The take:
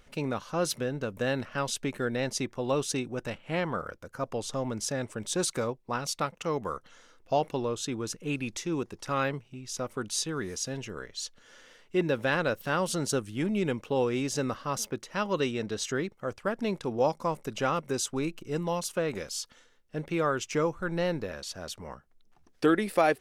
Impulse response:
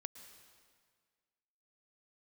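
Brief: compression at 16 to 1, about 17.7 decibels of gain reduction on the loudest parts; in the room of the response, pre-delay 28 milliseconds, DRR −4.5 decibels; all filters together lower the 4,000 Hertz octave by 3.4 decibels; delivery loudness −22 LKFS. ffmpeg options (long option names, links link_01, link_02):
-filter_complex "[0:a]equalizer=frequency=4000:width_type=o:gain=-4.5,acompressor=threshold=-36dB:ratio=16,asplit=2[link_01][link_02];[1:a]atrim=start_sample=2205,adelay=28[link_03];[link_02][link_03]afir=irnorm=-1:irlink=0,volume=8.5dB[link_04];[link_01][link_04]amix=inputs=2:normalize=0,volume=13.5dB"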